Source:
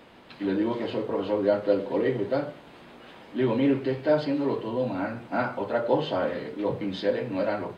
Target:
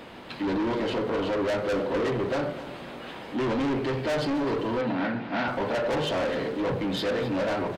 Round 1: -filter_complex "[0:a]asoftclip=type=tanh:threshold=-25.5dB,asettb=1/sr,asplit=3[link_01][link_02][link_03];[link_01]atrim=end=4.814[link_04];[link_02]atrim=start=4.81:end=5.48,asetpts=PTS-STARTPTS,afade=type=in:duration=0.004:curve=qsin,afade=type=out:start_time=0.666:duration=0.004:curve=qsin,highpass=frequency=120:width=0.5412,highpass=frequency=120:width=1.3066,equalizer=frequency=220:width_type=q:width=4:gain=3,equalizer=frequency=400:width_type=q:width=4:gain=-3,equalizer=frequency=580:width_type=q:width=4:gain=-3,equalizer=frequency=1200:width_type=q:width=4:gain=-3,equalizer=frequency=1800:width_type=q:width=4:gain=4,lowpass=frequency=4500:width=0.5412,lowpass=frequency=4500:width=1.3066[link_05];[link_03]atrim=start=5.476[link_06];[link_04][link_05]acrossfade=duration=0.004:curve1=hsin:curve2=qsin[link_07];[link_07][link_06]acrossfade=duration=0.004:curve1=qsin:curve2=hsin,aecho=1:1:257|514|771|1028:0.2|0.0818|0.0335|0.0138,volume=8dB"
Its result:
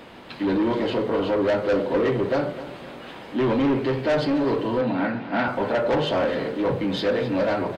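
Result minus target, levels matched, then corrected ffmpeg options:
soft clipping: distortion −4 dB
-filter_complex "[0:a]asoftclip=type=tanh:threshold=-32.5dB,asettb=1/sr,asplit=3[link_01][link_02][link_03];[link_01]atrim=end=4.814[link_04];[link_02]atrim=start=4.81:end=5.48,asetpts=PTS-STARTPTS,afade=type=in:duration=0.004:curve=qsin,afade=type=out:start_time=0.666:duration=0.004:curve=qsin,highpass=frequency=120:width=0.5412,highpass=frequency=120:width=1.3066,equalizer=frequency=220:width_type=q:width=4:gain=3,equalizer=frequency=400:width_type=q:width=4:gain=-3,equalizer=frequency=580:width_type=q:width=4:gain=-3,equalizer=frequency=1200:width_type=q:width=4:gain=-3,equalizer=frequency=1800:width_type=q:width=4:gain=4,lowpass=frequency=4500:width=0.5412,lowpass=frequency=4500:width=1.3066[link_05];[link_03]atrim=start=5.476[link_06];[link_04][link_05]acrossfade=duration=0.004:curve1=hsin:curve2=qsin[link_07];[link_07][link_06]acrossfade=duration=0.004:curve1=qsin:curve2=hsin,aecho=1:1:257|514|771|1028:0.2|0.0818|0.0335|0.0138,volume=8dB"

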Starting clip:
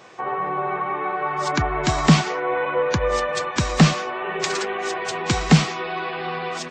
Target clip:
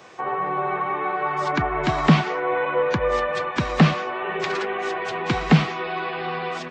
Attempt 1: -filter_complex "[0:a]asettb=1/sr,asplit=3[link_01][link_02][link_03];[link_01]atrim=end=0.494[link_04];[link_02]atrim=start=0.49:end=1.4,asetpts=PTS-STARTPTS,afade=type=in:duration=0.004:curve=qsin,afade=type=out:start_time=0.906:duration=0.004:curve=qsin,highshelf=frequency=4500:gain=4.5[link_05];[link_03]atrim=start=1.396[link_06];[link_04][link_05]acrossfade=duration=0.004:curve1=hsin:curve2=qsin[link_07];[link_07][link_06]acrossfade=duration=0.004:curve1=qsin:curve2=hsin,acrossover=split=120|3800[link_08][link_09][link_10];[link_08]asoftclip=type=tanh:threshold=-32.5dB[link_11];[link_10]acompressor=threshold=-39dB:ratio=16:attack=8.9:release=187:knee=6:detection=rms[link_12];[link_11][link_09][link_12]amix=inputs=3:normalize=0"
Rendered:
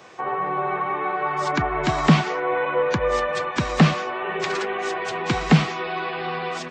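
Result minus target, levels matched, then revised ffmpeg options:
downward compressor: peak gain reduction −8.5 dB
-filter_complex "[0:a]asettb=1/sr,asplit=3[link_01][link_02][link_03];[link_01]atrim=end=0.494[link_04];[link_02]atrim=start=0.49:end=1.4,asetpts=PTS-STARTPTS,afade=type=in:duration=0.004:curve=qsin,afade=type=out:start_time=0.906:duration=0.004:curve=qsin,highshelf=frequency=4500:gain=4.5[link_05];[link_03]atrim=start=1.396[link_06];[link_04][link_05]acrossfade=duration=0.004:curve1=hsin:curve2=qsin[link_07];[link_07][link_06]acrossfade=duration=0.004:curve1=qsin:curve2=hsin,acrossover=split=120|3800[link_08][link_09][link_10];[link_08]asoftclip=type=tanh:threshold=-32.5dB[link_11];[link_10]acompressor=threshold=-48dB:ratio=16:attack=8.9:release=187:knee=6:detection=rms[link_12];[link_11][link_09][link_12]amix=inputs=3:normalize=0"

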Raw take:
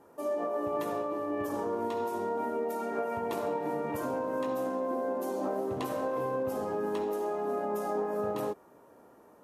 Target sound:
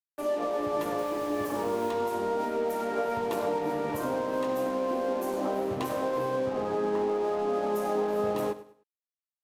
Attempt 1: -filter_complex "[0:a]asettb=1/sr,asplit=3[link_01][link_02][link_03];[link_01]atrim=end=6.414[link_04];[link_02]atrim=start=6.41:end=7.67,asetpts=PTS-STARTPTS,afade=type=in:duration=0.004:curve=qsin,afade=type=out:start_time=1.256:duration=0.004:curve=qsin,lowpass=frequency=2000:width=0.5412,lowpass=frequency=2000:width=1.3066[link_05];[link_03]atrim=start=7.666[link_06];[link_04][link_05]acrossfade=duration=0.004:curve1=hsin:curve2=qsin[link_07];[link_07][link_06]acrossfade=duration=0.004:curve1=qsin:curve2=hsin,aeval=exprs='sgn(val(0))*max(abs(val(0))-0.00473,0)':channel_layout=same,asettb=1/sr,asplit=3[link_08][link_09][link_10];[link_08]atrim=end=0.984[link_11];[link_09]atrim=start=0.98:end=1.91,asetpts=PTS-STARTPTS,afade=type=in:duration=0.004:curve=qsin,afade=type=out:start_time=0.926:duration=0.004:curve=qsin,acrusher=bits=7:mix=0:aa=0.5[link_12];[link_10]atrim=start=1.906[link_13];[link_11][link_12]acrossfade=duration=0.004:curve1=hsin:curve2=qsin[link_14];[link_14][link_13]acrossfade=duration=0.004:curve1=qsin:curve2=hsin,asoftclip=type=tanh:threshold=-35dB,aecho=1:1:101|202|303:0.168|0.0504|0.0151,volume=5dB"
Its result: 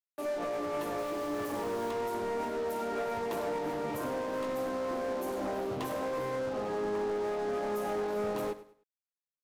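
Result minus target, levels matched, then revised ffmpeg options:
soft clipping: distortion +15 dB
-filter_complex "[0:a]asettb=1/sr,asplit=3[link_01][link_02][link_03];[link_01]atrim=end=6.414[link_04];[link_02]atrim=start=6.41:end=7.67,asetpts=PTS-STARTPTS,afade=type=in:duration=0.004:curve=qsin,afade=type=out:start_time=1.256:duration=0.004:curve=qsin,lowpass=frequency=2000:width=0.5412,lowpass=frequency=2000:width=1.3066[link_05];[link_03]atrim=start=7.666[link_06];[link_04][link_05]acrossfade=duration=0.004:curve1=hsin:curve2=qsin[link_07];[link_07][link_06]acrossfade=duration=0.004:curve1=qsin:curve2=hsin,aeval=exprs='sgn(val(0))*max(abs(val(0))-0.00473,0)':channel_layout=same,asettb=1/sr,asplit=3[link_08][link_09][link_10];[link_08]atrim=end=0.984[link_11];[link_09]atrim=start=0.98:end=1.91,asetpts=PTS-STARTPTS,afade=type=in:duration=0.004:curve=qsin,afade=type=out:start_time=0.926:duration=0.004:curve=qsin,acrusher=bits=7:mix=0:aa=0.5[link_12];[link_10]atrim=start=1.906[link_13];[link_11][link_12]acrossfade=duration=0.004:curve1=hsin:curve2=qsin[link_14];[link_14][link_13]acrossfade=duration=0.004:curve1=qsin:curve2=hsin,asoftclip=type=tanh:threshold=-23dB,aecho=1:1:101|202|303:0.168|0.0504|0.0151,volume=5dB"

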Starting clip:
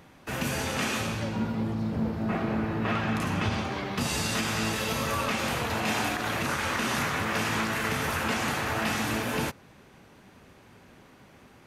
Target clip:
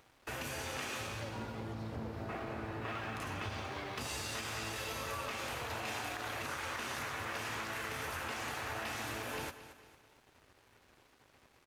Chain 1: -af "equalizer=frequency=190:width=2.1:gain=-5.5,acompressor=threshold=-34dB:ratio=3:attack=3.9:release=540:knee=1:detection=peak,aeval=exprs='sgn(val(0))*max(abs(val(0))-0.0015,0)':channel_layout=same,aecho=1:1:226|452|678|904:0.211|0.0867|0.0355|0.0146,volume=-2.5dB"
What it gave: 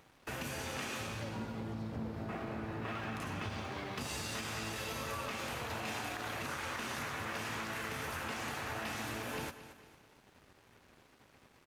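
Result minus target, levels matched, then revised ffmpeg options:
250 Hz band +3.0 dB
-af "equalizer=frequency=190:width=2.1:gain=-14.5,acompressor=threshold=-34dB:ratio=3:attack=3.9:release=540:knee=1:detection=peak,aeval=exprs='sgn(val(0))*max(abs(val(0))-0.0015,0)':channel_layout=same,aecho=1:1:226|452|678|904:0.211|0.0867|0.0355|0.0146,volume=-2.5dB"

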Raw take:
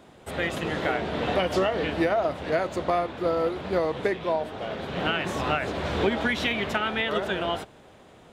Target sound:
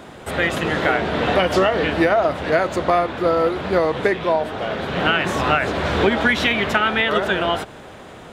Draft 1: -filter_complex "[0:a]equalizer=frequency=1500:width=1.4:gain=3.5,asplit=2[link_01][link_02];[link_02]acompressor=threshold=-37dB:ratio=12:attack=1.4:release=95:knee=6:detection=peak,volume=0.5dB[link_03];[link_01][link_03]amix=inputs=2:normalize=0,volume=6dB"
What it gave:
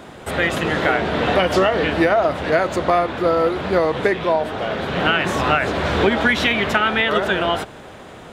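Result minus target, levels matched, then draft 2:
downward compressor: peak gain reduction −6 dB
-filter_complex "[0:a]equalizer=frequency=1500:width=1.4:gain=3.5,asplit=2[link_01][link_02];[link_02]acompressor=threshold=-43.5dB:ratio=12:attack=1.4:release=95:knee=6:detection=peak,volume=0.5dB[link_03];[link_01][link_03]amix=inputs=2:normalize=0,volume=6dB"

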